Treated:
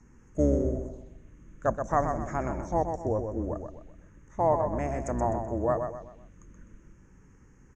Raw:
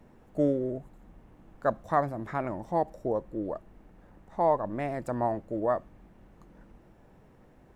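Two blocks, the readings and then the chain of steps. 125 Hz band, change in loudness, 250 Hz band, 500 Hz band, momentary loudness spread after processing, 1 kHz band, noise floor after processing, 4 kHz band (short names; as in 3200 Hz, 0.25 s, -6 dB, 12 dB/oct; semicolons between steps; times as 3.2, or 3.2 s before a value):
+5.5 dB, +1.0 dB, +1.0 dB, +1.0 dB, 13 LU, +0.5 dB, -57 dBFS, n/a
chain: octaver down 2 oct, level 0 dB; envelope phaser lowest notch 560 Hz, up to 4000 Hz, full sweep at -31 dBFS; synth low-pass 6500 Hz, resonance Q 15; feedback echo 0.127 s, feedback 37%, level -6.5 dB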